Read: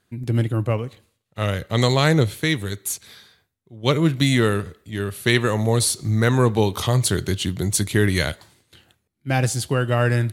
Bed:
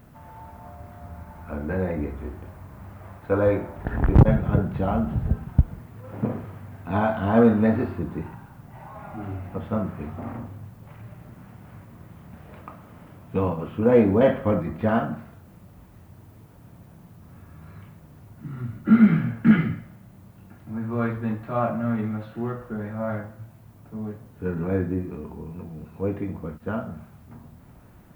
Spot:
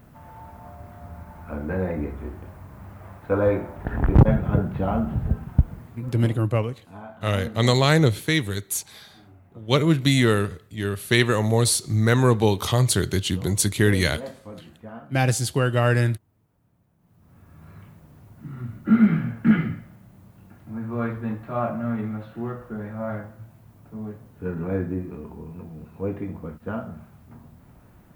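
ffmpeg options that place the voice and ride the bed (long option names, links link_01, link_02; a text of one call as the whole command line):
ffmpeg -i stem1.wav -i stem2.wav -filter_complex "[0:a]adelay=5850,volume=-0.5dB[link_01];[1:a]volume=16.5dB,afade=type=out:start_time=5.84:duration=0.65:silence=0.125893,afade=type=in:start_time=16.98:duration=0.73:silence=0.149624[link_02];[link_01][link_02]amix=inputs=2:normalize=0" out.wav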